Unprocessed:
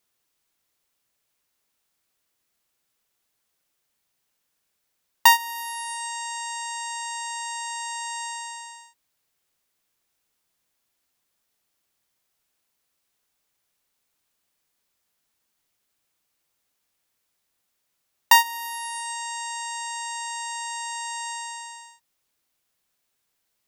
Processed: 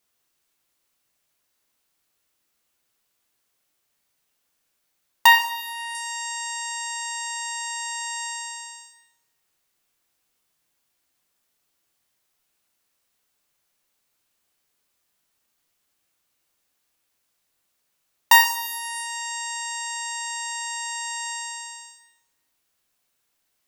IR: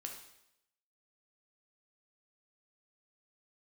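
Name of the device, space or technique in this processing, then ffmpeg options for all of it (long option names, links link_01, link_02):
bathroom: -filter_complex "[1:a]atrim=start_sample=2205[link_01];[0:a][link_01]afir=irnorm=-1:irlink=0,asettb=1/sr,asplit=3[link_02][link_03][link_04];[link_02]atrim=end=5.264[link_05];[link_03]atrim=start=5.26:end=5.95,asetpts=PTS-STARTPTS,afade=type=in:duration=0.004:curve=qsin,afade=type=out:start_time=0.686:duration=0.004:curve=qsin,highshelf=frequency=4500:width_type=q:width=1.5:gain=-7[link_06];[link_04]atrim=start=5.946[link_07];[link_05][link_06]acrossfade=duration=0.004:curve1=hsin:curve2=qsin[link_08];[link_08][link_07]acrossfade=duration=0.004:curve1=qsin:curve2=hsin,volume=5dB"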